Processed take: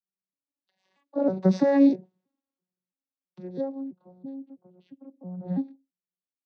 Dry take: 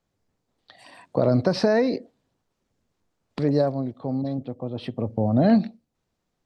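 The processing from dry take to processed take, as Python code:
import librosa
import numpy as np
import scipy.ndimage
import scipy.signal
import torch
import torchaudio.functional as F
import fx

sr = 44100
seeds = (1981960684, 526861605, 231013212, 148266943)

y = fx.vocoder_arp(x, sr, chord='bare fifth', root=54, every_ms=325)
y = fx.doppler_pass(y, sr, speed_mps=8, closest_m=6.3, pass_at_s=1.94)
y = fx.band_widen(y, sr, depth_pct=40)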